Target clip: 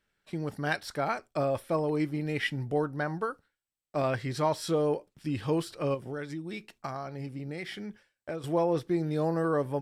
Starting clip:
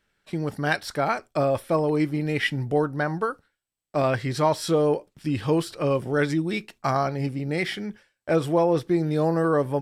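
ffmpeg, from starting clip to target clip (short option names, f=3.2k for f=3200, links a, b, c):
-filter_complex "[0:a]asettb=1/sr,asplit=3[a][b][c];[a]atrim=end=5.944[d];[b]atrim=start=5.94:end=8.44,asetpts=PTS-STARTPTS,afade=t=in:d=0.004:c=qsin,afade=t=out:st=2.496:d=0.004:c=qsin,acompressor=threshold=-28dB:ratio=6[e];[c]atrim=start=8.436[f];[d][e]acrossfade=d=0.004:c1=hsin:c2=qsin[g];[g][f]acrossfade=d=0.004:c1=qsin:c2=hsin,volume=-6dB"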